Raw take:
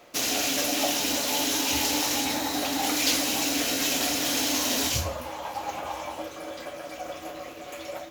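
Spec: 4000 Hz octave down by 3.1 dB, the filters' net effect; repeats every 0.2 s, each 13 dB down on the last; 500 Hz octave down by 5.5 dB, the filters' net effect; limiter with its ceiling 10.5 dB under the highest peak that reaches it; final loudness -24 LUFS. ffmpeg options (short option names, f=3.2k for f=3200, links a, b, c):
-af "equalizer=f=500:t=o:g=-7,equalizer=f=4k:t=o:g=-4,alimiter=limit=-23.5dB:level=0:latency=1,aecho=1:1:200|400|600:0.224|0.0493|0.0108,volume=8.5dB"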